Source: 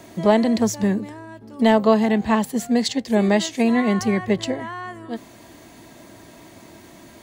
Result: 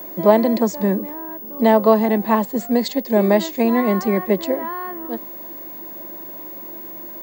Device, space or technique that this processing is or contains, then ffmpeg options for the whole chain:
old television with a line whistle: -af "highpass=frequency=180:width=0.5412,highpass=frequency=180:width=1.3066,equalizer=frequency=180:width_type=q:width=4:gain=4,equalizer=frequency=340:width_type=q:width=4:gain=8,equalizer=frequency=560:width_type=q:width=4:gain=9,equalizer=frequency=1000:width_type=q:width=4:gain=7,equalizer=frequency=3000:width_type=q:width=4:gain=-6,equalizer=frequency=5800:width_type=q:width=4:gain=-6,lowpass=frequency=7600:width=0.5412,lowpass=frequency=7600:width=1.3066,aeval=exprs='val(0)+0.0282*sin(2*PI*15625*n/s)':channel_layout=same,volume=-1dB"

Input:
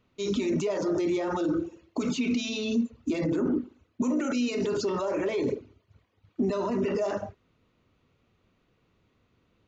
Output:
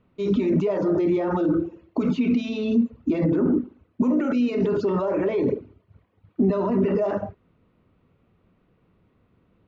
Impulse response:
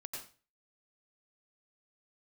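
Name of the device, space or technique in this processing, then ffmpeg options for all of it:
phone in a pocket: -af "lowpass=3600,equalizer=frequency=180:width_type=o:width=0.28:gain=5.5,highshelf=frequency=2200:gain=-11,volume=5.5dB"

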